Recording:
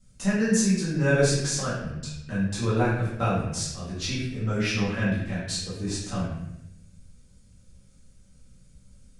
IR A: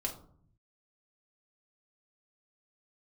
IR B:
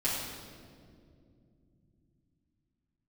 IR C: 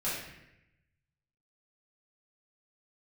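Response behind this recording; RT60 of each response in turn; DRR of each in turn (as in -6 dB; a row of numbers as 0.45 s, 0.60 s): C; 0.60 s, 2.4 s, 0.85 s; -0.5 dB, -10.0 dB, -11.0 dB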